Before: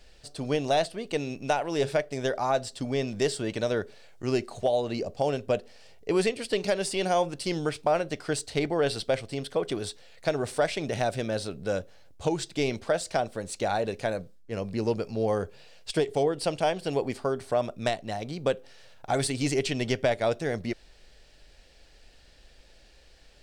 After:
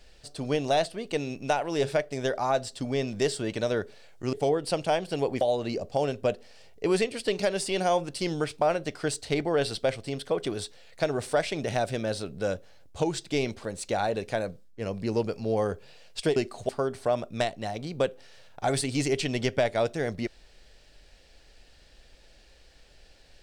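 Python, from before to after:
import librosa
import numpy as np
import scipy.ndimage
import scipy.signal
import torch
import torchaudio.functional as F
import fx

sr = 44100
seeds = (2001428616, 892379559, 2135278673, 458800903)

y = fx.edit(x, sr, fx.swap(start_s=4.33, length_s=0.33, other_s=16.07, other_length_s=1.08),
    fx.cut(start_s=12.89, length_s=0.46), tone=tone)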